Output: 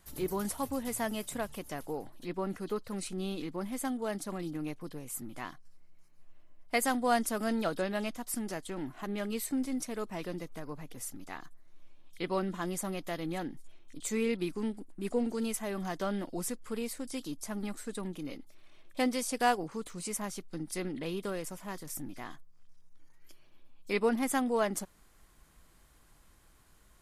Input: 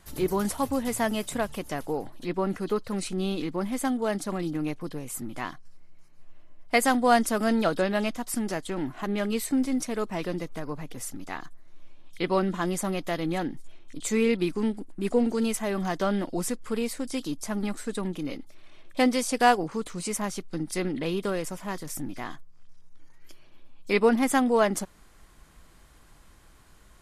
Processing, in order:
high-shelf EQ 11,000 Hz +9.5 dB
0:21.20–0:22.02: surface crackle 37 per second −48 dBFS
level −7.5 dB

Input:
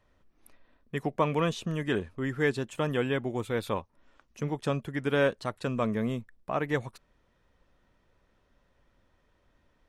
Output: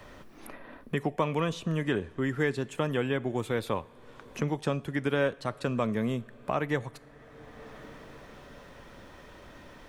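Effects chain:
coupled-rooms reverb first 0.54 s, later 4.8 s, from −18 dB, DRR 18 dB
multiband upward and downward compressor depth 70%

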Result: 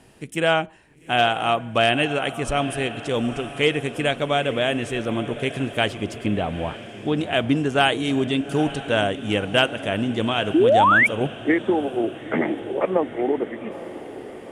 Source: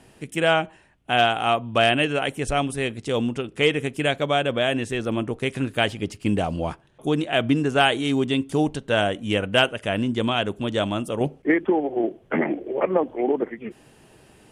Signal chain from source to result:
0:06.26–0:07.17: elliptic low-pass filter 4,000 Hz
feedback delay with all-pass diffusion 872 ms, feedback 58%, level −13.5 dB
0:10.54–0:11.07: sound drawn into the spectrogram rise 290–2,400 Hz −15 dBFS

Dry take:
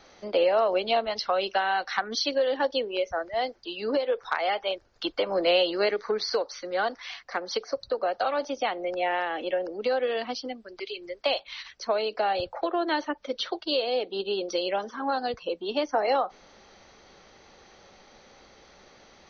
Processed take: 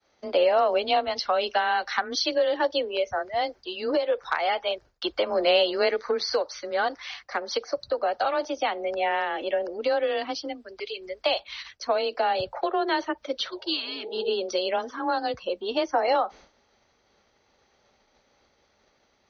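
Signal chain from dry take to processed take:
downward expander −44 dBFS
frequency shifter +22 Hz
healed spectral selection 0:13.52–0:14.27, 370–960 Hz both
level +1.5 dB

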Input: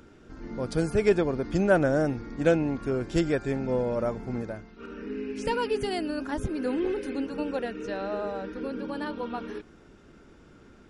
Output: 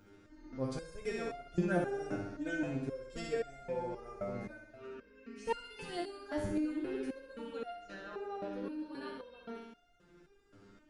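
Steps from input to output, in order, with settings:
flutter between parallel walls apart 11.2 metres, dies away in 0.89 s
step-sequenced resonator 3.8 Hz 100–700 Hz
level +1.5 dB

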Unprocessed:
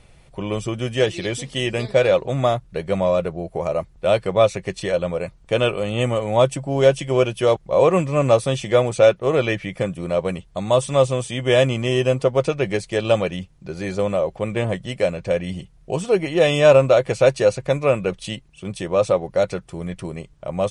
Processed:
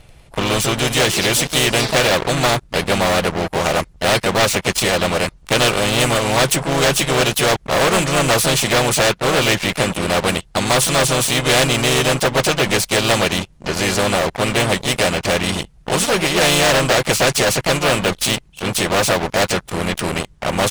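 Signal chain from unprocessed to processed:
pitch-shifted copies added +3 semitones −5 dB
leveller curve on the samples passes 3
every bin compressed towards the loudest bin 2 to 1
level −1.5 dB

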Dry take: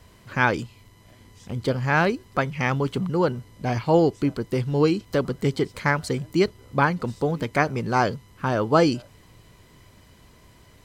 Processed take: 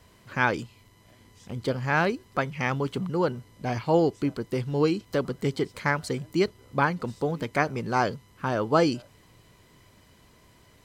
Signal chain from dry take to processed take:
low-shelf EQ 93 Hz −6 dB
level −3 dB

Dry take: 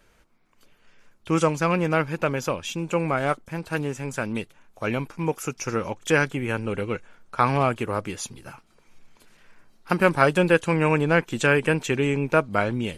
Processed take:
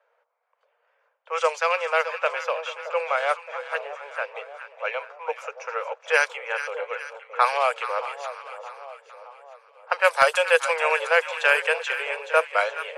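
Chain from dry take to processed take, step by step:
Butterworth high-pass 470 Hz 96 dB per octave
low-pass that shuts in the quiet parts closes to 950 Hz, open at −16.5 dBFS
high-shelf EQ 2,400 Hz +8.5 dB
echo with a time of its own for lows and highs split 950 Hz, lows 620 ms, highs 426 ms, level −11 dB
wave folding −5 dBFS

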